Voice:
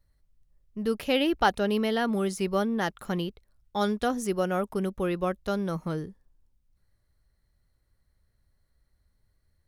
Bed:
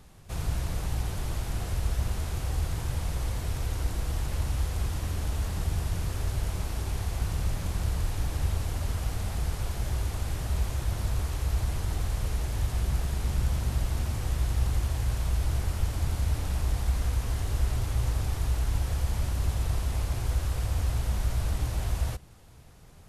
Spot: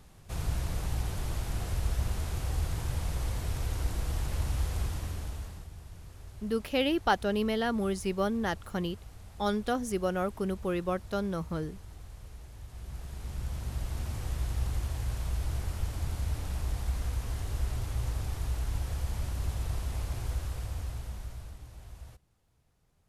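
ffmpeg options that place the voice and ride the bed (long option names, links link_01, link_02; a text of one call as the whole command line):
ffmpeg -i stem1.wav -i stem2.wav -filter_complex "[0:a]adelay=5650,volume=-3dB[link_01];[1:a]volume=10.5dB,afade=type=out:start_time=4.77:duration=0.91:silence=0.16788,afade=type=in:start_time=12.67:duration=1.49:silence=0.237137,afade=type=out:start_time=20.23:duration=1.37:silence=0.211349[link_02];[link_01][link_02]amix=inputs=2:normalize=0" out.wav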